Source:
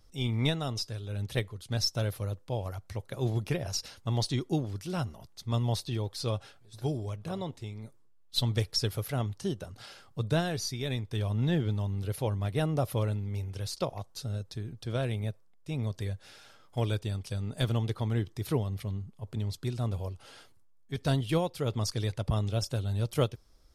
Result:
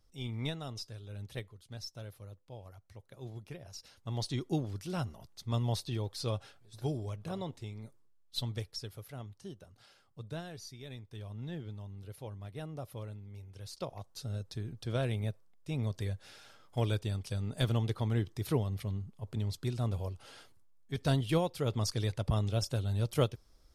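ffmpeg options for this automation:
-af "volume=15.5dB,afade=t=out:st=1.09:d=0.73:silence=0.473151,afade=t=in:st=3.75:d=0.8:silence=0.251189,afade=t=out:st=7.79:d=1.06:silence=0.298538,afade=t=in:st=13.48:d=1.14:silence=0.251189"

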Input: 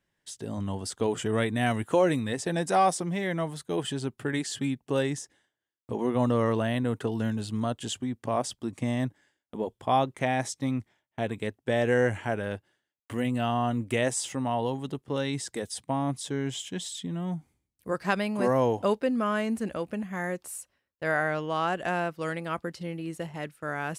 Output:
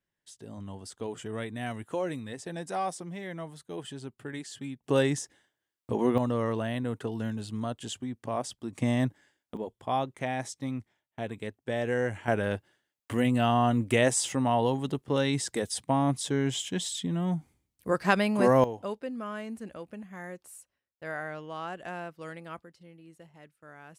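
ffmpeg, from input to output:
-af "asetnsamples=n=441:p=0,asendcmd='4.84 volume volume 2.5dB;6.18 volume volume -4dB;8.75 volume volume 2dB;9.57 volume volume -5dB;12.28 volume volume 3dB;18.64 volume volume -9.5dB;22.64 volume volume -17dB',volume=-9dB"

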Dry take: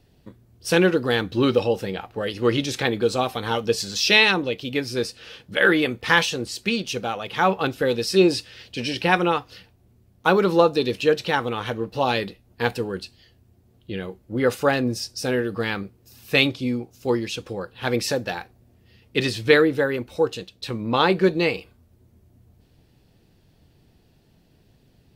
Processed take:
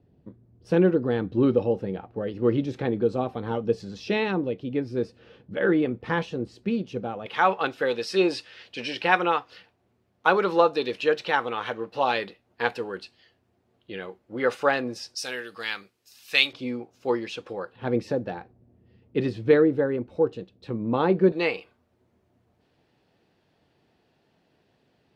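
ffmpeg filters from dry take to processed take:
-af "asetnsamples=n=441:p=0,asendcmd='7.26 bandpass f 1200;15.15 bandpass f 4100;16.53 bandpass f 950;17.76 bandpass f 260;21.32 bandpass f 1100',bandpass=f=220:t=q:w=0.52:csg=0"

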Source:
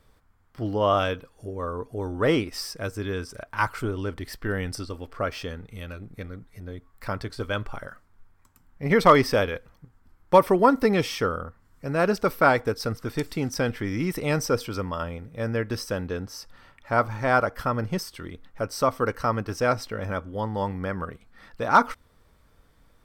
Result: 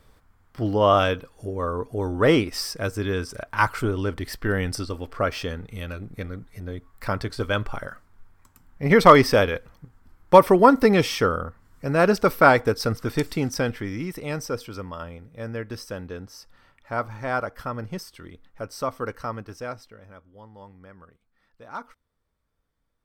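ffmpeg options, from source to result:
-af "volume=4dB,afade=t=out:st=13.21:d=0.89:silence=0.354813,afade=t=out:st=19.12:d=0.91:silence=0.223872"

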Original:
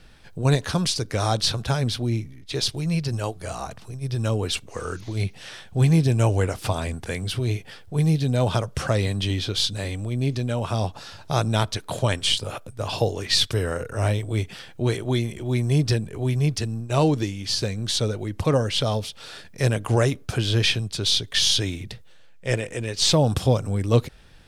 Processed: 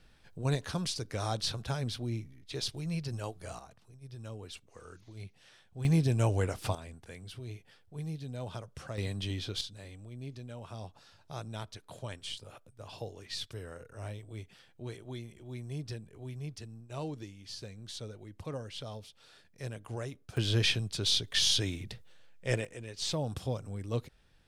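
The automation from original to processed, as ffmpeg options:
-af "asetnsamples=n=441:p=0,asendcmd='3.59 volume volume -20dB;5.85 volume volume -8dB;6.75 volume volume -18.5dB;8.98 volume volume -11dB;9.61 volume volume -19dB;20.37 volume volume -7dB;22.65 volume volume -15dB',volume=-11dB"

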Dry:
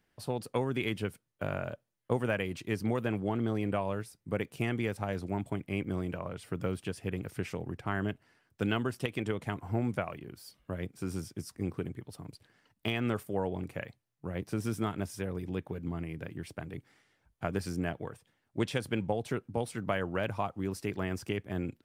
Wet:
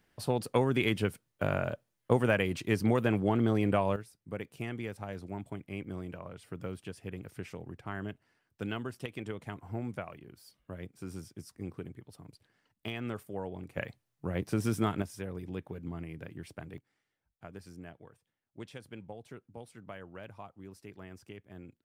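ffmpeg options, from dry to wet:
-af "asetnsamples=n=441:p=0,asendcmd='3.96 volume volume -6dB;13.77 volume volume 3dB;15.02 volume volume -3.5dB;16.78 volume volume -14dB',volume=4dB"

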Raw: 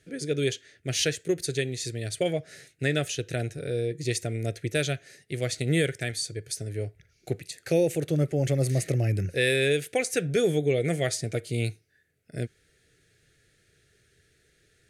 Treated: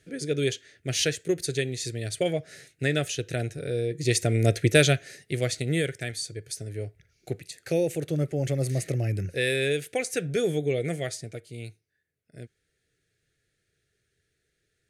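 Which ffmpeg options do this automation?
-af "volume=9.5dB,afade=t=in:st=3.89:d=0.68:silence=0.354813,afade=t=out:st=4.57:d=1.13:silence=0.266073,afade=t=out:st=10.78:d=0.67:silence=0.354813"

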